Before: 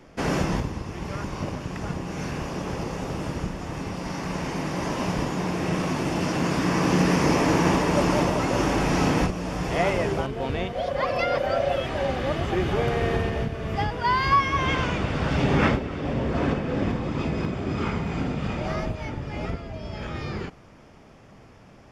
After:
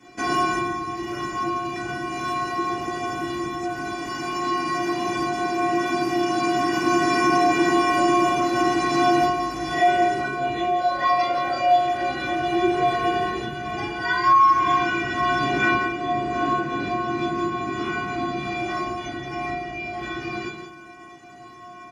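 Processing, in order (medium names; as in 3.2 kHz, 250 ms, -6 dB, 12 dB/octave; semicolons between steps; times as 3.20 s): bass shelf 270 Hz +4 dB; inharmonic resonator 350 Hz, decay 0.6 s, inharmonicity 0.008; on a send: delay 170 ms -10 dB; on the sum: reverberation RT60 0.40 s, pre-delay 3 ms, DRR -1 dB; in parallel at +1.5 dB: compression, threshold -55 dBFS, peak gain reduction 25 dB; on the sum: high-pass 67 Hz; treble shelf 9.2 kHz -9.5 dB; loudness maximiser +28 dB; trim -8.5 dB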